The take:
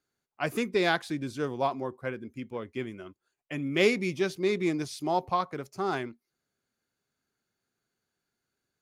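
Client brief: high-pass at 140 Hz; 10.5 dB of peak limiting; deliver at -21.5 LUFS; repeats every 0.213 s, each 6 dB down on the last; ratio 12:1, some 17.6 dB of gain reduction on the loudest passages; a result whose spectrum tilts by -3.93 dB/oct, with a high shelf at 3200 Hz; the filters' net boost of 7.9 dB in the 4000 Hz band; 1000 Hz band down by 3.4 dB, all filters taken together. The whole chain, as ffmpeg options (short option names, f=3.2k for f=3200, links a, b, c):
-af "highpass=140,equalizer=f=1k:t=o:g=-5.5,highshelf=f=3.2k:g=6.5,equalizer=f=4k:t=o:g=5.5,acompressor=threshold=-34dB:ratio=12,alimiter=level_in=6dB:limit=-24dB:level=0:latency=1,volume=-6dB,aecho=1:1:213|426|639|852|1065|1278:0.501|0.251|0.125|0.0626|0.0313|0.0157,volume=19dB"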